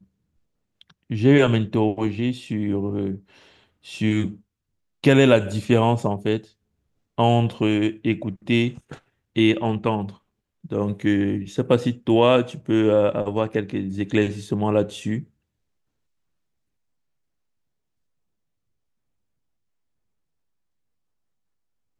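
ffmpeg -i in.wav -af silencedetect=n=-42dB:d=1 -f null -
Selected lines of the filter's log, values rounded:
silence_start: 15.24
silence_end: 22.00 | silence_duration: 6.76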